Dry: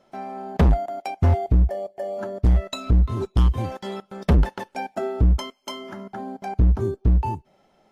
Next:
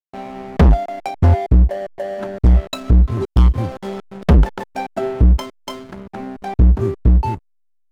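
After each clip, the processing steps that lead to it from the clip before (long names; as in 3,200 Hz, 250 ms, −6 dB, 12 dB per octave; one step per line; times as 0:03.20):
slack as between gear wheels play −29.5 dBFS
level +6 dB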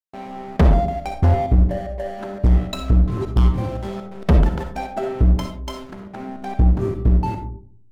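comb and all-pass reverb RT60 0.54 s, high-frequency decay 0.3×, pre-delay 20 ms, DRR 5 dB
level −3.5 dB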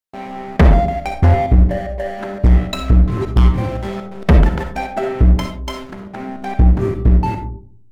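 dynamic equaliser 2,000 Hz, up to +6 dB, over −47 dBFS, Q 1.7
level +4 dB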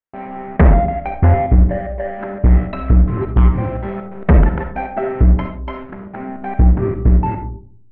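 low-pass filter 2,200 Hz 24 dB per octave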